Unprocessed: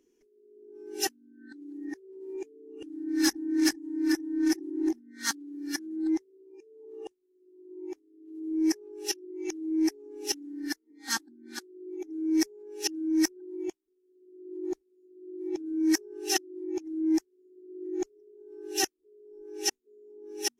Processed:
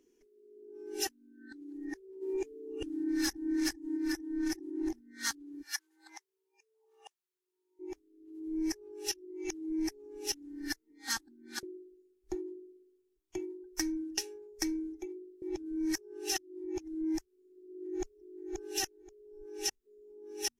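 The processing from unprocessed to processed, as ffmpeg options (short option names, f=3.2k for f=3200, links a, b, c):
-filter_complex "[0:a]asplit=3[a][b][c];[a]afade=t=out:st=2.21:d=0.02[d];[b]acontrast=71,afade=t=in:st=2.21:d=0.02,afade=t=out:st=3.96:d=0.02[e];[c]afade=t=in:st=3.96:d=0.02[f];[d][e][f]amix=inputs=3:normalize=0,asplit=3[g][h][i];[g]afade=t=out:st=5.61:d=0.02[j];[h]highpass=f=790:w=0.5412,highpass=f=790:w=1.3066,afade=t=in:st=5.61:d=0.02,afade=t=out:st=7.79:d=0.02[k];[i]afade=t=in:st=7.79:d=0.02[l];[j][k][l]amix=inputs=3:normalize=0,asplit=2[m][n];[n]afade=t=in:st=17.68:d=0.01,afade=t=out:st=18.49:d=0.01,aecho=0:1:530|1060|1590:0.595662|0.0893493|0.0134024[o];[m][o]amix=inputs=2:normalize=0,asplit=3[p][q][r];[p]atrim=end=11.632[s];[q]atrim=start=11.628:end=15.422,asetpts=PTS-STARTPTS,areverse[t];[r]atrim=start=15.418[u];[s][t]acrossfade=d=0.004:c1=hsin:c2=hsin[v];[v][u]acrossfade=d=0.004:c1=hsin:c2=hsin,asubboost=boost=11.5:cutoff=77,acompressor=threshold=-30dB:ratio=6"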